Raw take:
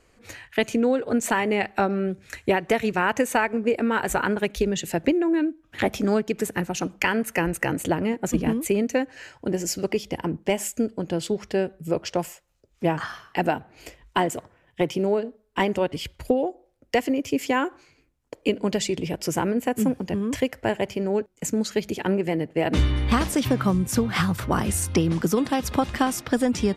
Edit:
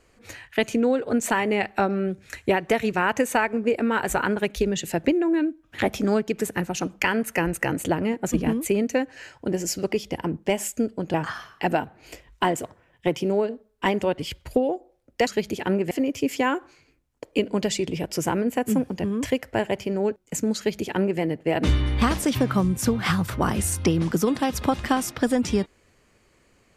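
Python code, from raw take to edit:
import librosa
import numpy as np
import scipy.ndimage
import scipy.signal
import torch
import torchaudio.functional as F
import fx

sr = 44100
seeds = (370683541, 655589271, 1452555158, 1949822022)

y = fx.edit(x, sr, fx.cut(start_s=11.14, length_s=1.74),
    fx.duplicate(start_s=21.66, length_s=0.64, to_s=17.01), tone=tone)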